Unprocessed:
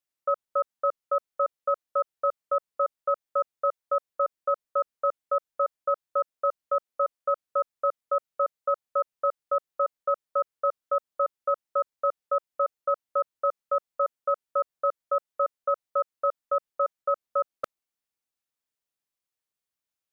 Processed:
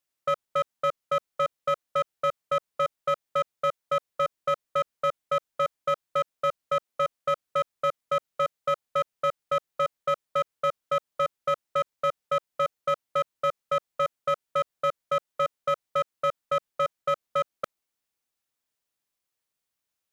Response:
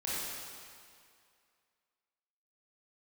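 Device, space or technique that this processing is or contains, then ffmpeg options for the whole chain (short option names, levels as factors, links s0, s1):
clipper into limiter: -af "asoftclip=type=hard:threshold=0.0891,alimiter=limit=0.0631:level=0:latency=1,volume=1.68"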